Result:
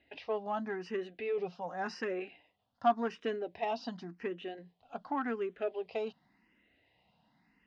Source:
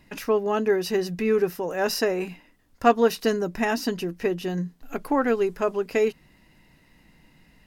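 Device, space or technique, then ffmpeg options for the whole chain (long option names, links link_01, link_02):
barber-pole phaser into a guitar amplifier: -filter_complex "[0:a]asettb=1/sr,asplit=3[link_01][link_02][link_03];[link_01]atrim=end=1.374[link_04];[link_02]atrim=start=1.37:end=2.2,asetpts=PTS-STARTPTS,afade=type=in:duration=0.004:curve=qsin,afade=type=out:start_time=0.826:duration=0.004:curve=qsin,aecho=1:1:5.6:0.41,atrim=end_sample=36603[link_05];[link_03]atrim=start=2.196[link_06];[link_04][link_05]acrossfade=duration=0.004:curve1=hsin:curve2=qsin[link_07];[link_07][link_06]acrossfade=duration=0.004:curve1=qsin:curve2=hsin,asplit=2[link_08][link_09];[link_09]afreqshift=0.89[link_10];[link_08][link_10]amix=inputs=2:normalize=1,asoftclip=type=tanh:threshold=-14.5dB,highpass=99,equalizer=frequency=150:width_type=q:width=4:gain=-8,equalizer=frequency=350:width_type=q:width=4:gain=-3,equalizer=frequency=730:width_type=q:width=4:gain=8,equalizer=frequency=3200:width_type=q:width=4:gain=4,lowpass=frequency=4400:width=0.5412,lowpass=frequency=4400:width=1.3066,volume=-9dB"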